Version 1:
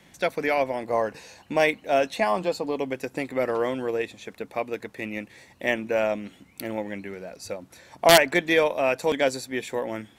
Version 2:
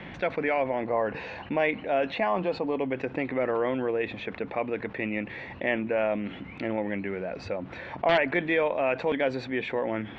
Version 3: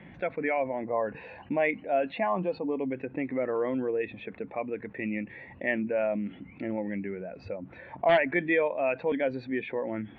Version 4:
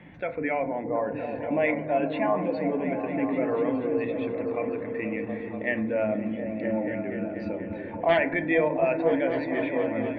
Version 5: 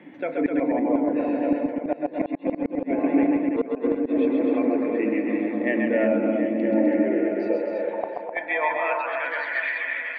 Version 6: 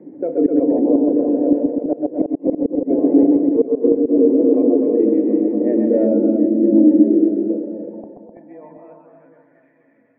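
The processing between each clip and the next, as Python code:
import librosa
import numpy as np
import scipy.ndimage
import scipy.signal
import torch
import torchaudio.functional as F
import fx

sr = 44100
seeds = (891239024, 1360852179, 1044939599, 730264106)

y1 = scipy.signal.sosfilt(scipy.signal.butter(4, 2900.0, 'lowpass', fs=sr, output='sos'), x)
y1 = fx.env_flatten(y1, sr, amount_pct=50)
y1 = y1 * librosa.db_to_amplitude(-7.5)
y2 = fx.dynamic_eq(y1, sr, hz=540.0, q=0.87, threshold_db=-35.0, ratio=4.0, max_db=-4)
y2 = fx.spectral_expand(y2, sr, expansion=1.5)
y3 = fx.echo_opening(y2, sr, ms=241, hz=200, octaves=1, feedback_pct=70, wet_db=0)
y3 = fx.rev_fdn(y3, sr, rt60_s=0.65, lf_ratio=1.0, hf_ratio=0.35, size_ms=20.0, drr_db=8.0)
y4 = fx.filter_sweep_highpass(y3, sr, from_hz=290.0, to_hz=1800.0, start_s=6.84, end_s=9.65, q=3.2)
y4 = fx.gate_flip(y4, sr, shuts_db=-12.0, range_db=-39)
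y4 = fx.echo_multitap(y4, sr, ms=(128, 135, 255, 331, 731), db=(-7.0, -5.5, -6.0, -6.0, -14.5))
y5 = fx.filter_sweep_lowpass(y4, sr, from_hz=430.0, to_hz=170.0, start_s=5.94, end_s=9.44, q=2.4)
y5 = y5 * librosa.db_to_amplitude(3.5)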